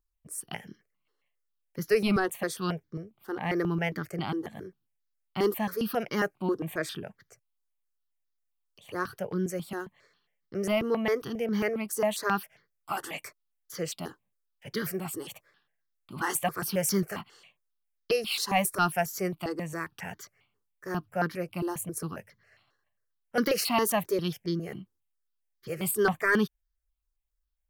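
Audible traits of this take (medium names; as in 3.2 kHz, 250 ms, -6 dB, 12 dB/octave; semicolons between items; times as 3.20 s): notches that jump at a steady rate 7.4 Hz 640–2600 Hz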